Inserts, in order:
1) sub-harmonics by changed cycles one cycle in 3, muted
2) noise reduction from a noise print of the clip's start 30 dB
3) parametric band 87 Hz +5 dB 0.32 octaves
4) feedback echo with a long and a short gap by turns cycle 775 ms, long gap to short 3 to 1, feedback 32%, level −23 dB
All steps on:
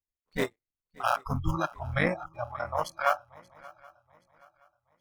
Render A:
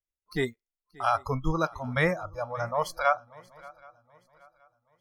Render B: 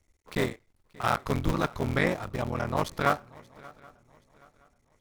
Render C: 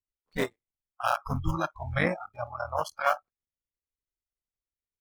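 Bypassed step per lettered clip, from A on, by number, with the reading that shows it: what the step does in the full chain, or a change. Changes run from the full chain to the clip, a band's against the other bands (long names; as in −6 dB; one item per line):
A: 1, 500 Hz band +2.0 dB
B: 2, 1 kHz band −3.0 dB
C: 4, echo-to-direct ratio −21.5 dB to none audible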